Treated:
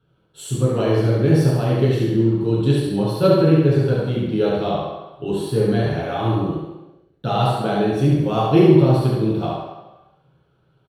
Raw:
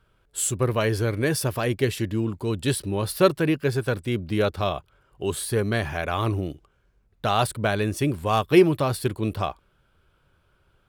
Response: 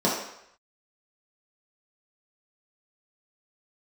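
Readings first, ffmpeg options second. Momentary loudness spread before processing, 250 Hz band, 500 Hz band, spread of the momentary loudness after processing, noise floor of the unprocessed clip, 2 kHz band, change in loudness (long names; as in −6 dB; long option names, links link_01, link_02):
8 LU, +7.5 dB, +5.5 dB, 13 LU, −65 dBFS, −3.0 dB, +6.0 dB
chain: -filter_complex "[0:a]aecho=1:1:70|140|210|280|350:0.631|0.246|0.096|0.0374|0.0146[link_01];[1:a]atrim=start_sample=2205,asetrate=33075,aresample=44100[link_02];[link_01][link_02]afir=irnorm=-1:irlink=0,volume=-17dB"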